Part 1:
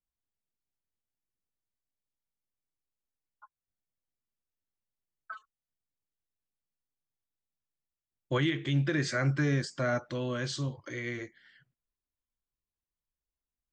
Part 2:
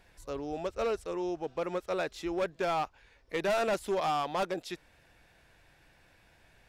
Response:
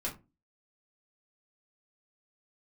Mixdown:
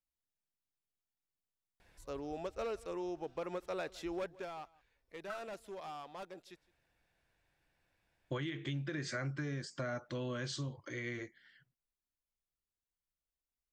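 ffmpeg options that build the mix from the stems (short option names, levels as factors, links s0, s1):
-filter_complex "[0:a]volume=0.631[s0];[1:a]adelay=1800,volume=0.562,afade=t=out:st=4.17:d=0.33:silence=0.281838,asplit=2[s1][s2];[s2]volume=0.0668,aecho=0:1:162:1[s3];[s0][s1][s3]amix=inputs=3:normalize=0,acompressor=threshold=0.0178:ratio=10"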